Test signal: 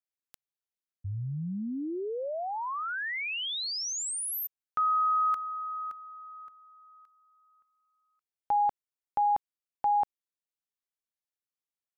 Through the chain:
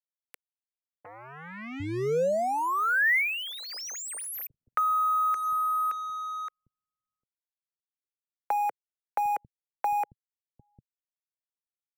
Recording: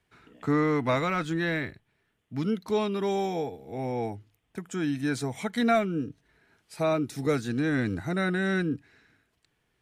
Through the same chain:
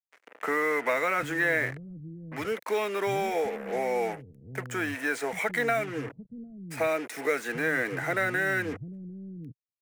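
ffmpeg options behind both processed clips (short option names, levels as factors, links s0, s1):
-filter_complex "[0:a]acrossover=split=390|1600|4600[s0][s1][s2][s3];[s0]acompressor=threshold=0.0112:ratio=3[s4];[s1]acompressor=threshold=0.0158:ratio=8[s5];[s2]acompressor=threshold=0.00891:ratio=8[s6];[s3]acompressor=threshold=0.00355:ratio=2[s7];[s4][s5][s6][s7]amix=inputs=4:normalize=0,asplit=2[s8][s9];[s9]asoftclip=type=tanh:threshold=0.0178,volume=0.531[s10];[s8][s10]amix=inputs=2:normalize=0,acrusher=bits=6:mix=0:aa=0.5,equalizer=f=125:t=o:w=1:g=5,equalizer=f=500:t=o:w=1:g=9,equalizer=f=2000:t=o:w=1:g=11,equalizer=f=4000:t=o:w=1:g=-9,acrossover=split=540[s11][s12];[s12]acontrast=67[s13];[s11][s13]amix=inputs=2:normalize=0,acrossover=split=220[s14][s15];[s14]adelay=750[s16];[s16][s15]amix=inputs=2:normalize=0,volume=0.562"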